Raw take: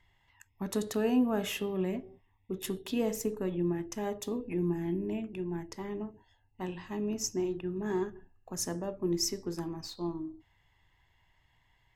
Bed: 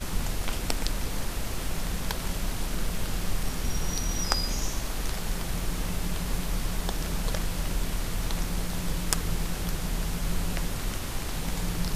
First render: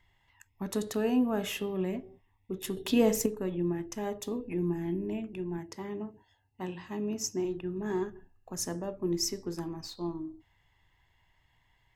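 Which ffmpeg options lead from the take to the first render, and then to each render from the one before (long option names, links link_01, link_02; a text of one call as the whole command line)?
ffmpeg -i in.wav -filter_complex "[0:a]asettb=1/sr,asplit=3[link_01][link_02][link_03];[link_01]atrim=end=5.584[link_04];[link_02]atrim=start=5.58:end=7.45,asetpts=PTS-STARTPTS,afade=type=in:duration=0.004:curve=qsin,afade=type=out:start_time=1.866:duration=0.004:curve=qsin,highpass=70[link_05];[link_03]atrim=start=7.446[link_06];[link_04][link_05]acrossfade=duration=0.004:curve1=hsin:curve2=qsin[link_07];[link_07][link_06]acrossfade=duration=0.004:curve1=qsin:curve2=hsin,asplit=3[link_08][link_09][link_10];[link_08]atrim=end=2.772[link_11];[link_09]atrim=start=2.768:end=3.262,asetpts=PTS-STARTPTS,volume=6.5dB[link_12];[link_10]atrim=start=3.258[link_13];[link_11][link_12]acrossfade=duration=0.004:curve1=hsin:curve2=hsin[link_14];[link_14][link_13]acrossfade=duration=0.004:curve1=hsin:curve2=hsin" out.wav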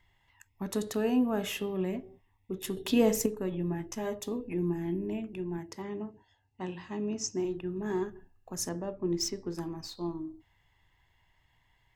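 ffmpeg -i in.wav -filter_complex "[0:a]asettb=1/sr,asplit=3[link_01][link_02][link_03];[link_01]atrim=end=3.514[link_04];[link_02]atrim=start=3.51:end=4.2,asetpts=PTS-STARTPTS,afade=type=in:duration=0.004:curve=qsin,afade=type=out:start_time=0.686:duration=0.004:curve=qsin,asplit=2[link_05][link_06];[link_06]adelay=13,volume=-5.5dB[link_07];[link_05][link_07]amix=inputs=2:normalize=0,atrim=end_sample=30429[link_08];[link_03]atrim=start=4.196[link_09];[link_04][link_08]acrossfade=duration=0.004:curve1=hsin:curve2=qsin[link_10];[link_10][link_09]acrossfade=duration=0.004:curve1=qsin:curve2=hsin,asettb=1/sr,asplit=3[link_11][link_12][link_13];[link_11]atrim=end=5.824[link_14];[link_12]atrim=start=5.82:end=7.36,asetpts=PTS-STARTPTS,afade=type=in:duration=0.004:curve=qsin,afade=type=out:start_time=1.536:duration=0.004:curve=qsin,lowpass=frequency=7700:width=0.5412,lowpass=frequency=7700:width=1.3066[link_15];[link_13]atrim=start=7.356[link_16];[link_14][link_15]acrossfade=duration=0.004:curve1=hsin:curve2=qsin[link_17];[link_17][link_16]acrossfade=duration=0.004:curve1=qsin:curve2=hsin,asettb=1/sr,asplit=3[link_18][link_19][link_20];[link_18]atrim=end=8.694[link_21];[link_19]atrim=start=8.69:end=9.55,asetpts=PTS-STARTPTS,afade=type=in:duration=0.004:curve=qsin,afade=type=out:start_time=0.856:duration=0.004:curve=qsin,adynamicsmooth=sensitivity=7:basefreq=4900[link_22];[link_20]atrim=start=9.546[link_23];[link_21][link_22]acrossfade=duration=0.004:curve1=hsin:curve2=qsin[link_24];[link_24][link_23]acrossfade=duration=0.004:curve1=qsin:curve2=hsin" out.wav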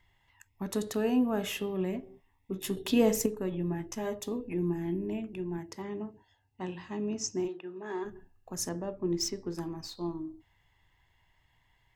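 ffmpeg -i in.wav -filter_complex "[0:a]asettb=1/sr,asplit=3[link_01][link_02][link_03];[link_01]atrim=end=2.014[link_04];[link_02]atrim=start=2.01:end=2.76,asetpts=PTS-STARTPTS,afade=type=in:duration=0.004:curve=qsin,afade=type=out:start_time=0.746:duration=0.004:curve=qsin,asplit=2[link_05][link_06];[link_06]adelay=15,volume=-4.5dB[link_07];[link_05][link_07]amix=inputs=2:normalize=0,atrim=end_sample=33075[link_08];[link_03]atrim=start=2.756[link_09];[link_04][link_08]acrossfade=duration=0.004:curve1=hsin:curve2=qsin[link_10];[link_10][link_09]acrossfade=duration=0.004:curve1=qsin:curve2=hsin,asplit=3[link_11][link_12][link_13];[link_11]afade=type=out:start_time=7.47:duration=0.02[link_14];[link_12]highpass=430,lowpass=4900,afade=type=in:start_time=7.47:duration=0.02,afade=type=out:start_time=8.04:duration=0.02[link_15];[link_13]afade=type=in:start_time=8.04:duration=0.02[link_16];[link_14][link_15][link_16]amix=inputs=3:normalize=0" out.wav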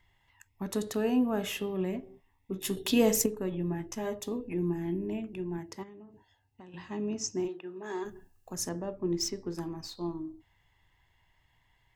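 ffmpeg -i in.wav -filter_complex "[0:a]asettb=1/sr,asplit=3[link_01][link_02][link_03];[link_01]atrim=end=2.654[link_04];[link_02]atrim=start=2.65:end=3.24,asetpts=PTS-STARTPTS,afade=type=in:duration=0.004:curve=qsin,afade=type=out:start_time=0.586:duration=0.004:curve=qsin,highshelf=frequency=2800:gain=6[link_05];[link_03]atrim=start=3.236[link_06];[link_04][link_05]acrossfade=duration=0.004:curve1=hsin:curve2=qsin[link_07];[link_07][link_06]acrossfade=duration=0.004:curve1=qsin:curve2=hsin,asettb=1/sr,asplit=3[link_08][link_09][link_10];[link_08]atrim=end=5.834[link_11];[link_09]atrim=start=5.83:end=6.74,asetpts=PTS-STARTPTS,afade=type=in:duration=0.004:curve=qsin,afade=type=out:start_time=0.906:duration=0.004:curve=qsin,acompressor=threshold=-46dB:ratio=16:attack=3.2:release=140:knee=1:detection=peak[link_12];[link_10]atrim=start=6.736[link_13];[link_11][link_12]acrossfade=duration=0.004:curve1=hsin:curve2=qsin[link_14];[link_14][link_13]acrossfade=duration=0.004:curve1=qsin:curve2=hsin,asettb=1/sr,asplit=3[link_15][link_16][link_17];[link_15]atrim=end=7.834[link_18];[link_16]atrim=start=7.83:end=8.53,asetpts=PTS-STARTPTS,afade=type=in:duration=0.004:curve=qsin,afade=type=out:start_time=0.696:duration=0.004:curve=qsin,bass=frequency=250:gain=-1,treble=frequency=4000:gain=11[link_19];[link_17]atrim=start=8.526[link_20];[link_18][link_19]acrossfade=duration=0.004:curve1=hsin:curve2=qsin[link_21];[link_21][link_20]acrossfade=duration=0.004:curve1=qsin:curve2=hsin" out.wav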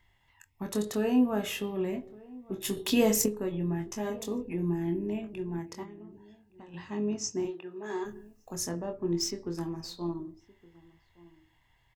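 ffmpeg -i in.wav -filter_complex "[0:a]asplit=2[link_01][link_02];[link_02]adelay=24,volume=-7dB[link_03];[link_01][link_03]amix=inputs=2:normalize=0,asplit=2[link_04][link_05];[link_05]adelay=1166,volume=-22dB,highshelf=frequency=4000:gain=-26.2[link_06];[link_04][link_06]amix=inputs=2:normalize=0" out.wav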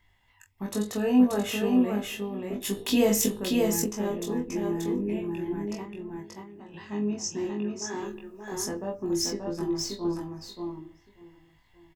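ffmpeg -i in.wav -filter_complex "[0:a]asplit=2[link_01][link_02];[link_02]adelay=20,volume=-3dB[link_03];[link_01][link_03]amix=inputs=2:normalize=0,aecho=1:1:581:0.708" out.wav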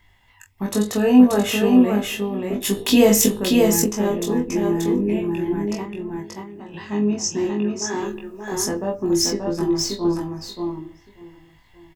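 ffmpeg -i in.wav -af "volume=8.5dB,alimiter=limit=-3dB:level=0:latency=1" out.wav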